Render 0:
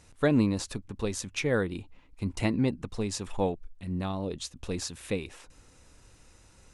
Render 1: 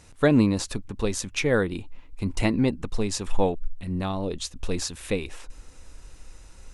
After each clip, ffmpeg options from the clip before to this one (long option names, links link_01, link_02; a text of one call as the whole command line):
ffmpeg -i in.wav -af "asubboost=boost=4.5:cutoff=50,volume=5dB" out.wav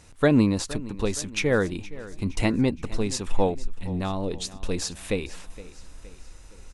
ffmpeg -i in.wav -af "aecho=1:1:467|934|1401|1868:0.126|0.0629|0.0315|0.0157" out.wav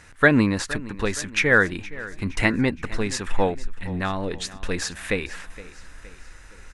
ffmpeg -i in.wav -af "equalizer=frequency=1700:width_type=o:width=0.93:gain=14.5" out.wav